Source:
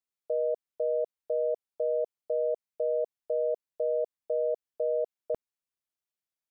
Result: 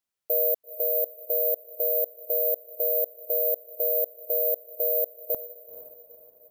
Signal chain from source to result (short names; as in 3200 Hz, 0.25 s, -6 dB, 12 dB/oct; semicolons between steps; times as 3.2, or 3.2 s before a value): on a send: diffused feedback echo 0.46 s, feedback 47%, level -13 dB; on the sum: careless resampling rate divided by 3×, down none, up zero stuff